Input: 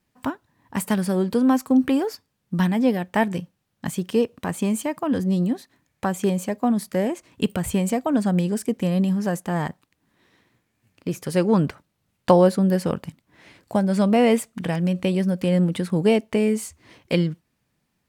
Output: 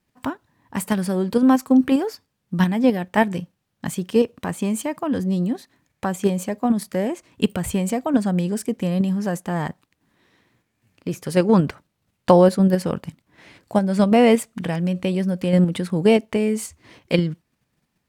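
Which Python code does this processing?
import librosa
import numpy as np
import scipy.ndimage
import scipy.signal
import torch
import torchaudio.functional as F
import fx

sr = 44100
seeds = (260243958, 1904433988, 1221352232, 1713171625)

p1 = fx.high_shelf(x, sr, hz=9800.0, db=-2.5)
p2 = fx.level_steps(p1, sr, step_db=18)
p3 = p1 + (p2 * 10.0 ** (-1.0 / 20.0))
y = p3 * 10.0 ** (-1.5 / 20.0)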